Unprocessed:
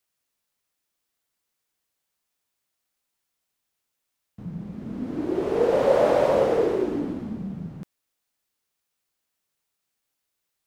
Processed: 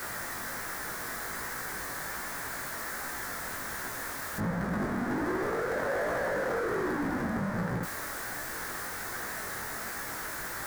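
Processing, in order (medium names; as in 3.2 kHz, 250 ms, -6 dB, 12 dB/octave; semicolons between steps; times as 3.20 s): one-bit comparator; chorus 1.3 Hz, delay 16 ms, depth 5.6 ms; resonant high shelf 2.2 kHz -8 dB, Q 3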